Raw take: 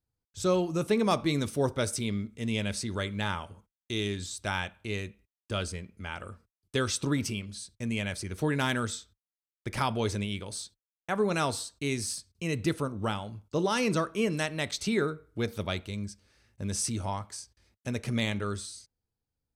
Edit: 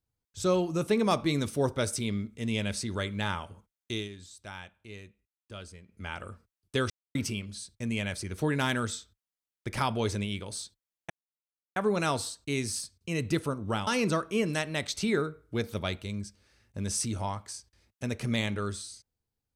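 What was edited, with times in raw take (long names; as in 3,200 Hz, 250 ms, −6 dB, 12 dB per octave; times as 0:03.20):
0:03.92–0:06.03: duck −11.5 dB, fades 0.17 s
0:06.90–0:07.15: silence
0:11.10: splice in silence 0.66 s
0:13.21–0:13.71: remove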